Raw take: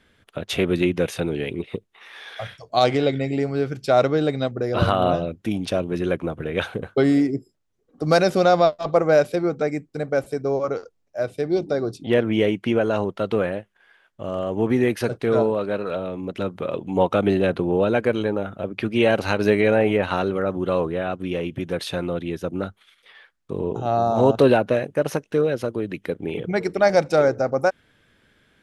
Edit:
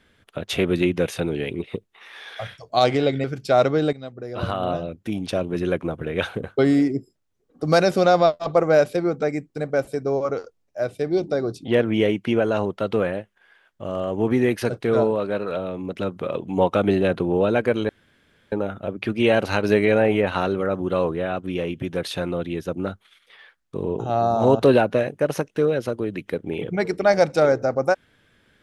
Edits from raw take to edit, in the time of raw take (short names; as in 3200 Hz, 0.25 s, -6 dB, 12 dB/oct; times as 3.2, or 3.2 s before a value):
3.24–3.63 cut
4.32–5.98 fade in, from -14 dB
18.28 insert room tone 0.63 s